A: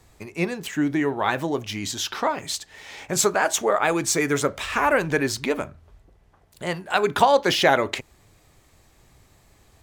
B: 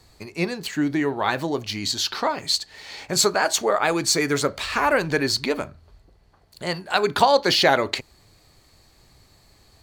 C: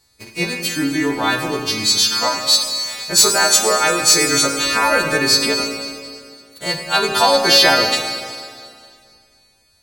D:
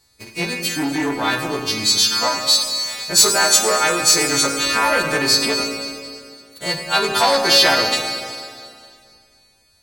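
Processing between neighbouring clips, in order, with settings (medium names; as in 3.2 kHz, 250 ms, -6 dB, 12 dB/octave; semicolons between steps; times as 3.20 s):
peaking EQ 4.4 kHz +14.5 dB 0.21 oct
partials quantised in pitch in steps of 2 st; waveshaping leveller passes 2; Schroeder reverb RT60 2.2 s, combs from 32 ms, DRR 3.5 dB; trim -5.5 dB
transformer saturation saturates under 1.6 kHz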